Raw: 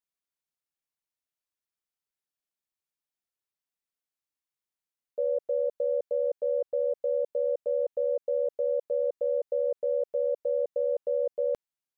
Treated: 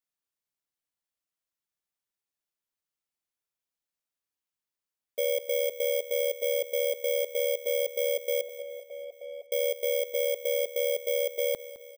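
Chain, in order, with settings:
samples in bit-reversed order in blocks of 16 samples
0:08.41–0:09.51: formant filter a
repeating echo 211 ms, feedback 58%, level −15.5 dB

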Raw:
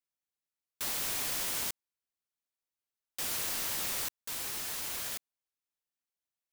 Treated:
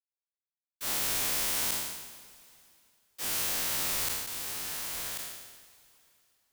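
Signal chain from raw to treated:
peak hold with a decay on every bin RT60 2.34 s
feedback delay with all-pass diffusion 941 ms, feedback 40%, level −15 dB
multiband upward and downward expander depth 100%

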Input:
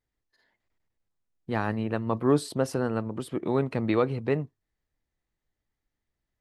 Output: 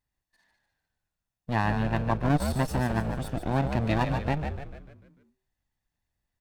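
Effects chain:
lower of the sound and its delayed copy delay 1.1 ms
echo with shifted repeats 148 ms, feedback 48%, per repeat −64 Hz, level −7 dB
saturating transformer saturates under 160 Hz
level +1 dB

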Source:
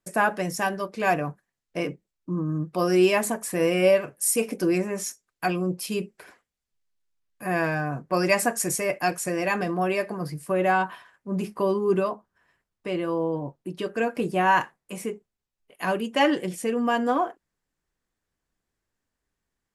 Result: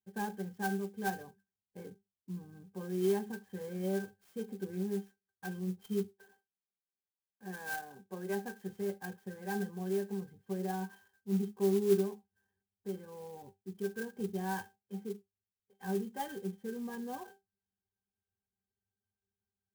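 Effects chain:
0:06.04–0:08.64: high-pass filter 220 Hz 12 dB per octave
resonances in every octave G, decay 0.17 s
converter with an unsteady clock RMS 0.044 ms

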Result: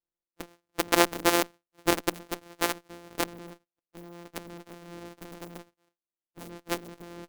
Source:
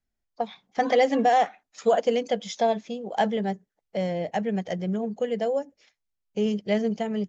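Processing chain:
samples sorted by size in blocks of 256 samples
harmonic generator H 3 −8 dB, 4 −24 dB, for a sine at −10 dBFS
low shelf with overshoot 210 Hz −8.5 dB, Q 1.5
level +3 dB

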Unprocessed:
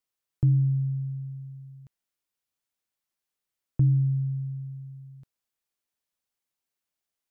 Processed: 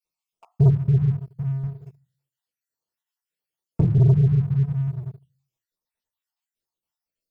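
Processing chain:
time-frequency cells dropped at random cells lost 61%
0:01.63–0:03.98: high-pass filter 150 Hz 6 dB per octave
convolution reverb RT60 0.30 s, pre-delay 4 ms, DRR −8 dB
leveller curve on the samples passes 2
level −2 dB

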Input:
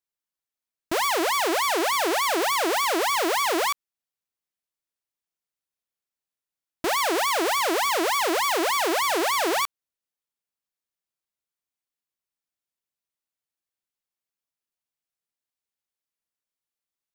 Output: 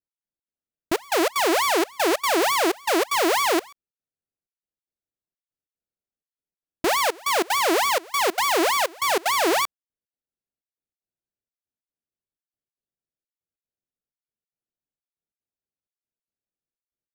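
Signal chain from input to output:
adaptive Wiener filter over 41 samples
gate pattern "x..xx.xxxxx" 188 BPM −24 dB
level +4.5 dB

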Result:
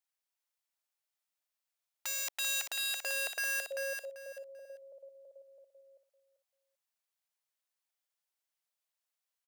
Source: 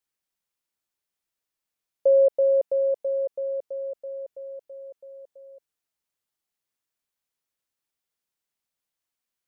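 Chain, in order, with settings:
wrap-around overflow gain 26 dB
Chebyshev high-pass filter 600 Hz, order 3
repeating echo 390 ms, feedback 22%, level −6 dB
level −4 dB

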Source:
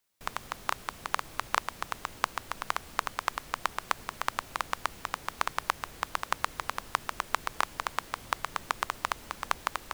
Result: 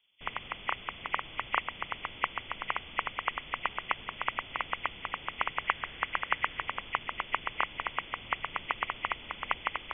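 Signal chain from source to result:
hearing-aid frequency compression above 1,900 Hz 4 to 1
0:05.64–0:06.63: parametric band 1,700 Hz +5.5 dB 0.63 octaves
level −1.5 dB

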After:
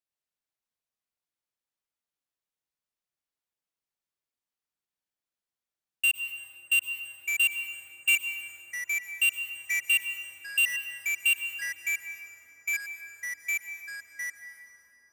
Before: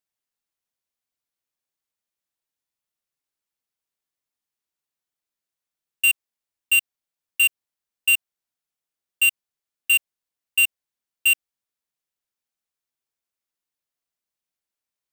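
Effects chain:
high-shelf EQ 7,300 Hz −4.5 dB
dense smooth reverb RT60 3.9 s, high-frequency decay 0.35×, pre-delay 95 ms, DRR 6 dB
delay with pitch and tempo change per echo 98 ms, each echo −3 semitones, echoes 3, each echo −6 dB
level −5.5 dB

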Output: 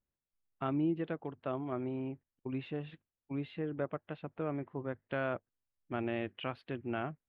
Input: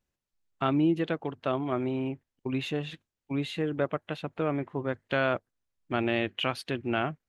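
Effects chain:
high-frequency loss of the air 430 metres
level −6.5 dB

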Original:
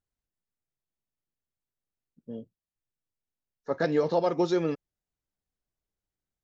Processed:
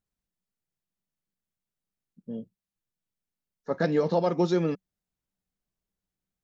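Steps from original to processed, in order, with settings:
parametric band 190 Hz +10 dB 0.43 octaves

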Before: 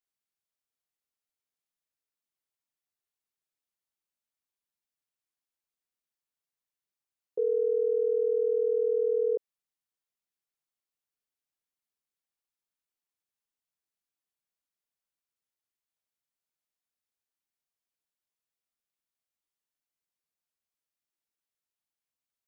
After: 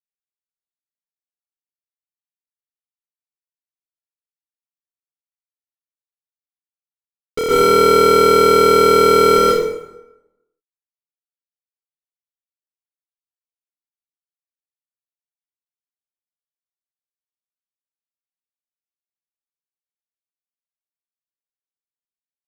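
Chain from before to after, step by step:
spectral tilt −6 dB per octave
fuzz pedal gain 48 dB, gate −51 dBFS
dense smooth reverb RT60 0.95 s, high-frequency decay 0.7×, pre-delay 110 ms, DRR −7.5 dB
level −6 dB

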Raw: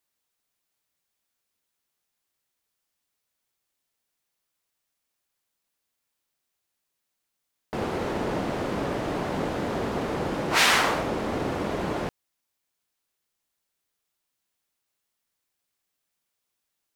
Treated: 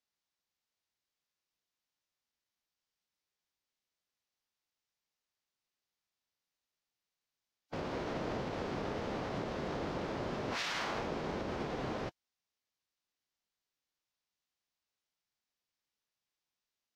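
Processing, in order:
brickwall limiter −19 dBFS, peak gain reduction 11.5 dB
phase-vocoder pitch shift with formants kept −5.5 semitones
high shelf with overshoot 7,300 Hz −9.5 dB, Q 1.5
level −8 dB

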